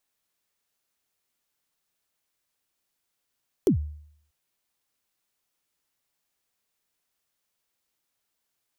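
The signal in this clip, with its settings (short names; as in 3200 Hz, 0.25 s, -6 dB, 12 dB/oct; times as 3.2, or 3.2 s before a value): kick drum length 0.64 s, from 440 Hz, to 75 Hz, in 0.103 s, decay 0.65 s, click on, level -14 dB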